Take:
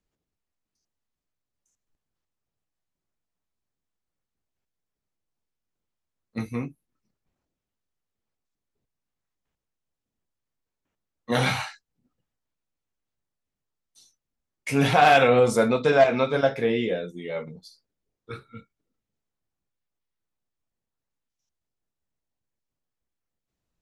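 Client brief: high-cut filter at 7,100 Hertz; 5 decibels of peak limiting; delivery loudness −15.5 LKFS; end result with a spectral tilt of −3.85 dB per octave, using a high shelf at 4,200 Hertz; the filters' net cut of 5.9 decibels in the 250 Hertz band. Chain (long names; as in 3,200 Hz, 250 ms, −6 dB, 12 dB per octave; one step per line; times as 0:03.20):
low-pass filter 7,100 Hz
parametric band 250 Hz −7 dB
high-shelf EQ 4,200 Hz −5.5 dB
level +10 dB
brickwall limiter −2 dBFS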